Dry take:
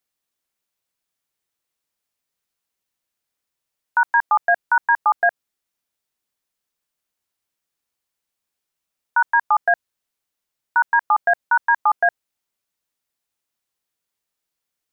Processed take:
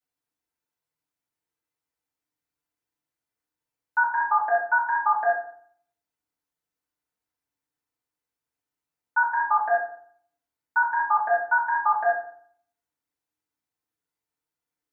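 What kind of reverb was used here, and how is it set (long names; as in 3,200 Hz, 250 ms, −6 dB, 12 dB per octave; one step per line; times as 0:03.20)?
feedback delay network reverb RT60 0.58 s, low-frequency decay 1.3×, high-frequency decay 0.3×, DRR −8.5 dB
level −13.5 dB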